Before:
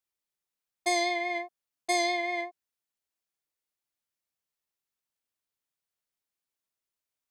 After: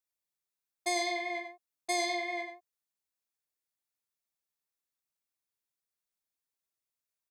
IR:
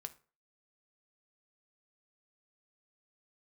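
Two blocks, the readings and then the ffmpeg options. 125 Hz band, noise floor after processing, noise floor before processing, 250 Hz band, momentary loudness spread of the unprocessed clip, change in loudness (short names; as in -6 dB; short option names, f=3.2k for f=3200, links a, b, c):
n/a, under -85 dBFS, under -85 dBFS, -4.5 dB, 14 LU, -4.0 dB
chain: -filter_complex "[0:a]highshelf=f=5.3k:g=4,bandreject=f=3k:w=13,asplit=2[a][b];[b]adelay=93.29,volume=-8dB,highshelf=f=4k:g=-2.1[c];[a][c]amix=inputs=2:normalize=0,volume=-5dB"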